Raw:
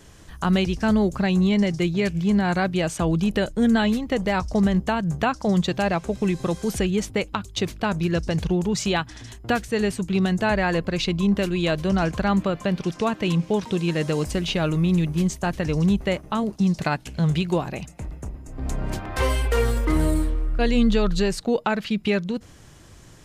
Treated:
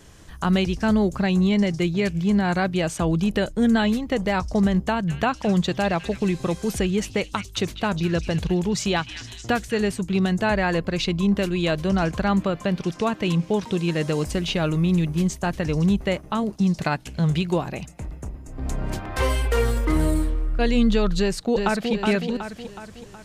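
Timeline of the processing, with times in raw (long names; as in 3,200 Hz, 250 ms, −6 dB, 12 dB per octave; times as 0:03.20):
0:04.83–0:09.90: echo through a band-pass that steps 206 ms, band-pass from 2,600 Hz, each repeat 0.7 octaves, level −7.5 dB
0:21.19–0:21.92: delay throw 370 ms, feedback 50%, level −4.5 dB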